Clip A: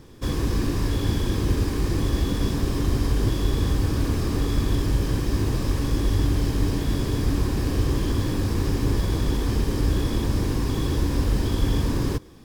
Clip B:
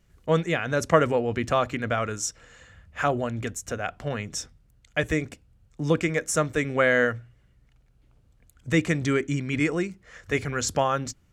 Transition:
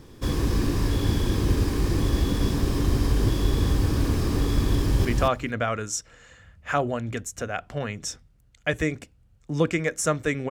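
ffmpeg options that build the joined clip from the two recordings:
ffmpeg -i cue0.wav -i cue1.wav -filter_complex "[0:a]apad=whole_dur=10.5,atrim=end=10.5,atrim=end=5.052[link_01];[1:a]atrim=start=1.348:end=6.8[link_02];[link_01][link_02]acrossfade=duration=0.004:curve1=hsin:curve2=hsin,asplit=2[link_03][link_04];[link_04]afade=type=in:start_time=4.76:duration=0.01,afade=type=out:start_time=5.05:duration=0.01,aecho=0:1:230|460:0.707946|0.0707946[link_05];[link_03][link_05]amix=inputs=2:normalize=0" out.wav

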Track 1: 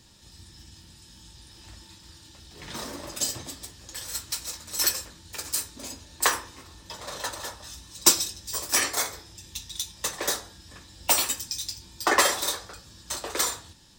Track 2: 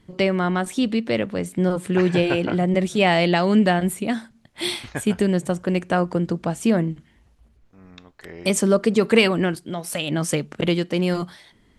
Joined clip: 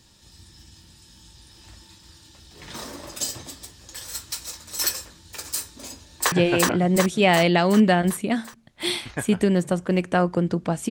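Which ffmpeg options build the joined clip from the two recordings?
ffmpeg -i cue0.wav -i cue1.wav -filter_complex "[0:a]apad=whole_dur=10.9,atrim=end=10.9,atrim=end=6.322[link_01];[1:a]atrim=start=2.098:end=6.68[link_02];[link_01][link_02]acrossfade=duration=0.004:curve1=hsin:curve2=hsin,asplit=2[link_03][link_04];[link_04]afade=type=in:start_time=6.07:duration=0.01,afade=type=out:start_time=6.32:duration=0.01,aecho=0:1:370|740|1110|1480|1850|2220|2590|2960|3330|3700:1|0.6|0.36|0.216|0.1296|0.07776|0.046656|0.0279936|0.0167962|0.0100777[link_05];[link_03][link_05]amix=inputs=2:normalize=0" out.wav

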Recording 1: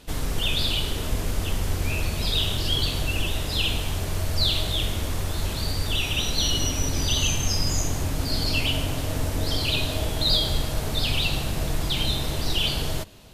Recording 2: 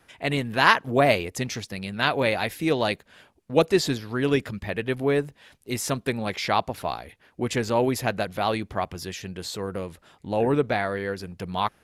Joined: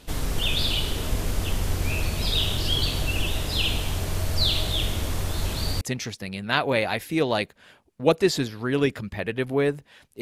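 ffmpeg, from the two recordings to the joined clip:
ffmpeg -i cue0.wav -i cue1.wav -filter_complex "[0:a]apad=whole_dur=10.21,atrim=end=10.21,atrim=end=5.812[link_01];[1:a]atrim=start=1.308:end=5.71[link_02];[link_01][link_02]acrossfade=duration=0.004:curve1=hsin:curve2=hsin" out.wav

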